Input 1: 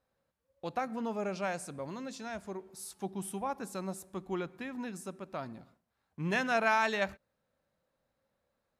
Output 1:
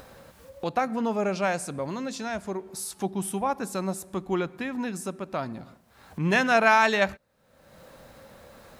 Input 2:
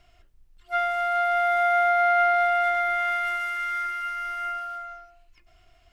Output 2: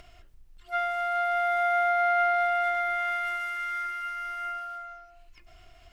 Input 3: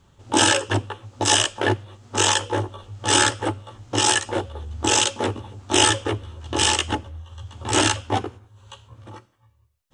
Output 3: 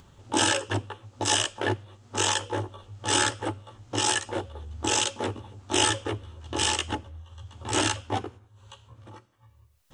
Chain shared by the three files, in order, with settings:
upward compression, threshold −39 dBFS
loudness normalisation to −27 LKFS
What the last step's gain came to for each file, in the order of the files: +8.5, −3.5, −6.0 decibels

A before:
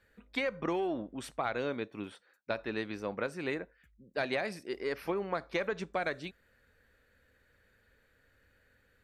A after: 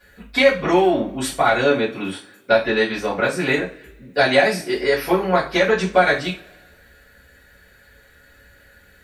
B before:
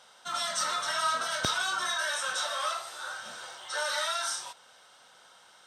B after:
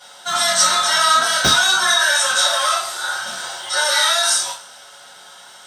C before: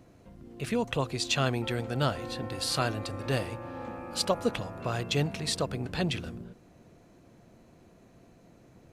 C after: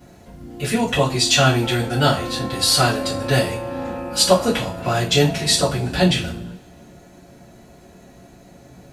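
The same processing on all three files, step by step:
high-shelf EQ 5,200 Hz +7 dB
coupled-rooms reverb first 0.31 s, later 1.6 s, from −26 dB, DRR −10 dB
normalise the peak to −1.5 dBFS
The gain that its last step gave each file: +6.0, +3.0, +1.0 decibels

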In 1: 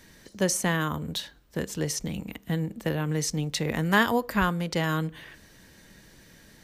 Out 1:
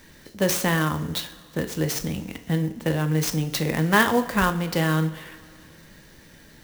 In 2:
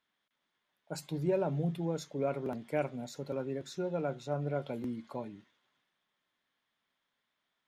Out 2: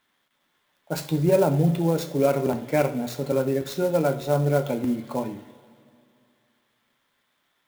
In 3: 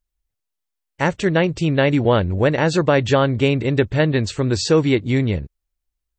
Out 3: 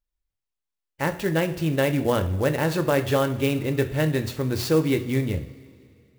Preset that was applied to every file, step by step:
coupled-rooms reverb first 0.44 s, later 2.6 s, from −17 dB, DRR 7 dB
converter with an unsteady clock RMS 0.025 ms
loudness normalisation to −24 LKFS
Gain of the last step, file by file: +3.0, +11.0, −7.0 decibels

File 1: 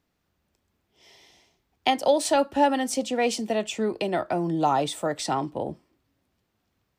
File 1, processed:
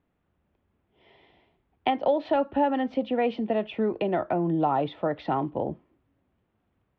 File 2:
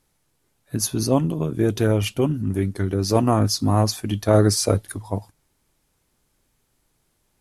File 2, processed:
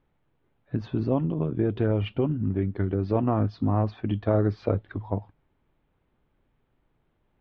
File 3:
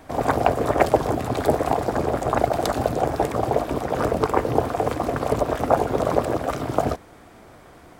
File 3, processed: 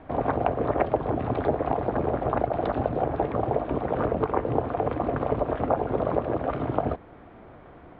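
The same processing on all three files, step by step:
Butterworth low-pass 3,500 Hz 36 dB per octave
high-shelf EQ 2,200 Hz −11.5 dB
downward compressor 2 to 1, threshold −24 dBFS
loudness normalisation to −27 LKFS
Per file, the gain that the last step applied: +2.0, 0.0, +0.5 decibels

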